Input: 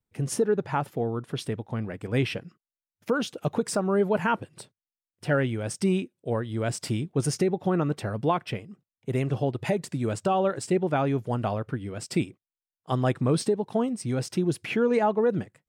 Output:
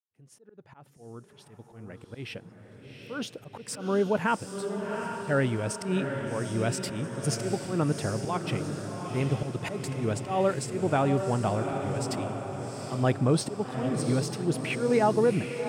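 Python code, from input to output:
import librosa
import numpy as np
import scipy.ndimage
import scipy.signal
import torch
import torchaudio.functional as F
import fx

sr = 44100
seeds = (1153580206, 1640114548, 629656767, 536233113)

y = fx.fade_in_head(x, sr, length_s=5.03)
y = fx.auto_swell(y, sr, attack_ms=150.0)
y = fx.echo_diffused(y, sr, ms=767, feedback_pct=55, wet_db=-6.0)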